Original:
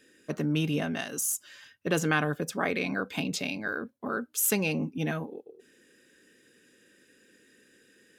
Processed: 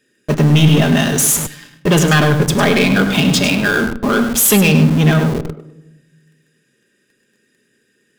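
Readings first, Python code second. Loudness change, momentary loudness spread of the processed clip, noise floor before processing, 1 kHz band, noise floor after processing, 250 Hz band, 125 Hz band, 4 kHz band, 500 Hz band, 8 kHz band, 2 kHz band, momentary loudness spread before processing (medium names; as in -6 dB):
+17.0 dB, 8 LU, -63 dBFS, +15.0 dB, -63 dBFS, +18.0 dB, +21.5 dB, +19.0 dB, +15.5 dB, +15.5 dB, +15.0 dB, 10 LU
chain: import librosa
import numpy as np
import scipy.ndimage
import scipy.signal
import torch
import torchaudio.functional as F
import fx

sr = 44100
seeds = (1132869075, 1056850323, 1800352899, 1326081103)

p1 = fx.leveller(x, sr, passes=3)
p2 = fx.peak_eq(p1, sr, hz=130.0, db=10.5, octaves=0.34)
p3 = p2 + fx.echo_single(p2, sr, ms=102, db=-9.0, dry=0)
p4 = fx.dynamic_eq(p3, sr, hz=3300.0, q=4.1, threshold_db=-44.0, ratio=4.0, max_db=7)
p5 = fx.room_shoebox(p4, sr, seeds[0], volume_m3=3400.0, walls='furnished', distance_m=1.3)
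p6 = fx.schmitt(p5, sr, flips_db=-24.0)
p7 = p5 + F.gain(torch.from_numpy(p6), -7.5).numpy()
y = F.gain(torch.from_numpy(p7), 3.5).numpy()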